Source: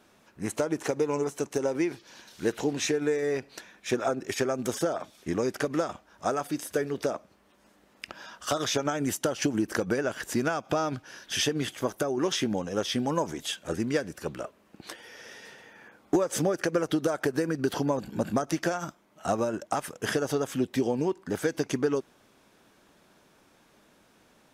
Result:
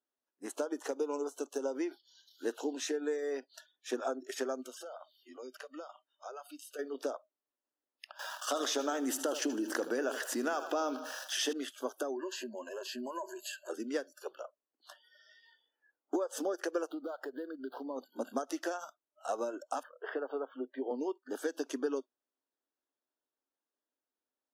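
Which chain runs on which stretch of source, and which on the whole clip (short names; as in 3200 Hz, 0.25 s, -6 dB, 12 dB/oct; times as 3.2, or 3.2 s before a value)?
4.61–6.79 bell 2800 Hz +8.5 dB 1.1 oct + notch 3400 Hz, Q 8.2 + compressor 2:1, threshold -41 dBFS
8.19–11.53 sample gate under -48 dBFS + feedback echo 78 ms, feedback 56%, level -15.5 dB + fast leveller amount 50%
12.16–13.69 ripple EQ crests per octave 1.4, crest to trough 16 dB + compressor 5:1, threshold -28 dBFS
14.42–16.37 HPF 260 Hz + high shelf 2200 Hz -4.5 dB
16.91–17.96 median filter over 15 samples + bell 120 Hz +12 dB 0.51 oct + compressor 2:1, threshold -31 dBFS
19.83–20.91 median filter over 5 samples + three-band isolator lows -23 dB, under 260 Hz, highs -22 dB, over 2500 Hz
whole clip: spectral noise reduction 27 dB; elliptic high-pass 250 Hz, stop band 40 dB; bell 2300 Hz -11 dB 0.21 oct; gain -7 dB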